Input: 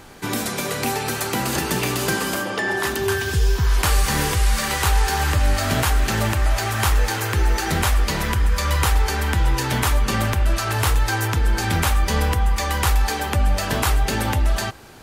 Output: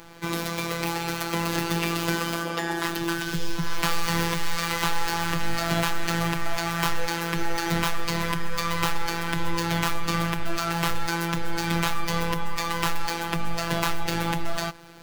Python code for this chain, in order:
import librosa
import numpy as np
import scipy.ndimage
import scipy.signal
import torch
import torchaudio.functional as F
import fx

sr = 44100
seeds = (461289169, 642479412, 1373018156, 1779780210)

y = scipy.ndimage.median_filter(x, 5, mode='constant')
y = fx.robotise(y, sr, hz=168.0)
y = fx.high_shelf(y, sr, hz=4900.0, db=4.5)
y = F.gain(torch.from_numpy(y), -1.0).numpy()